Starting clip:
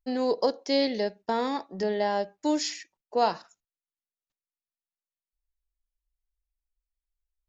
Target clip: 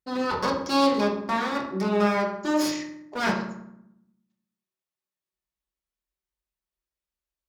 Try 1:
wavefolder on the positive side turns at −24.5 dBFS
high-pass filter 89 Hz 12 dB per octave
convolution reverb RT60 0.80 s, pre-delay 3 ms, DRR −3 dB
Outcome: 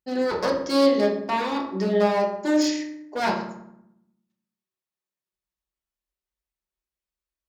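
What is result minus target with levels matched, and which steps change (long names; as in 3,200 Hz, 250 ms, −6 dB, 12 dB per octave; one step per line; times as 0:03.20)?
wavefolder on the positive side: distortion −9 dB
change: wavefolder on the positive side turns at −32 dBFS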